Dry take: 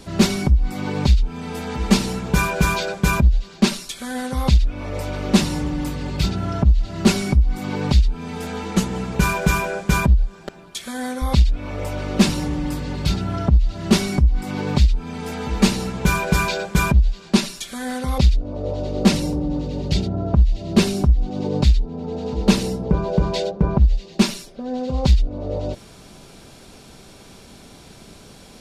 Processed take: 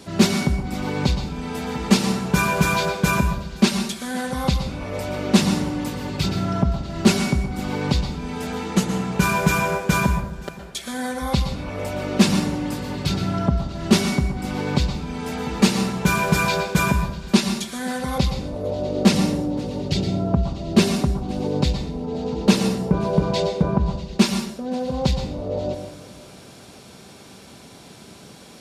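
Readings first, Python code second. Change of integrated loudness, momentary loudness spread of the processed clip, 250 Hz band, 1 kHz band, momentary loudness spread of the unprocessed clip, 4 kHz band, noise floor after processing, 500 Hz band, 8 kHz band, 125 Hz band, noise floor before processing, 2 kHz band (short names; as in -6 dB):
-1.5 dB, 9 LU, +0.5 dB, +1.5 dB, 10 LU, +0.5 dB, -44 dBFS, +1.0 dB, +0.5 dB, -3.0 dB, -44 dBFS, +0.5 dB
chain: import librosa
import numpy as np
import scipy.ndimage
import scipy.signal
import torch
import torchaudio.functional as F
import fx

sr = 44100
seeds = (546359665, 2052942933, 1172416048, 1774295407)

p1 = scipy.signal.sosfilt(scipy.signal.butter(2, 100.0, 'highpass', fs=sr, output='sos'), x)
p2 = p1 + fx.echo_feedback(p1, sr, ms=521, feedback_pct=35, wet_db=-21.5, dry=0)
y = fx.rev_plate(p2, sr, seeds[0], rt60_s=0.67, hf_ratio=0.55, predelay_ms=105, drr_db=6.5)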